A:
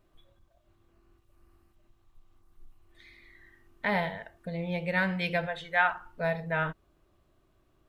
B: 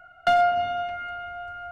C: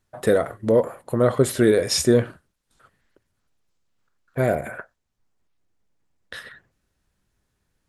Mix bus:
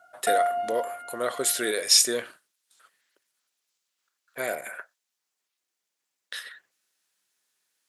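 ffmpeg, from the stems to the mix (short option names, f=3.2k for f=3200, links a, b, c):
-filter_complex "[1:a]tiltshelf=f=1.4k:g=8.5,volume=-8.5dB[a];[2:a]tiltshelf=f=1.5k:g=-9,volume=-2.5dB[b];[a][b]amix=inputs=2:normalize=0,highpass=350"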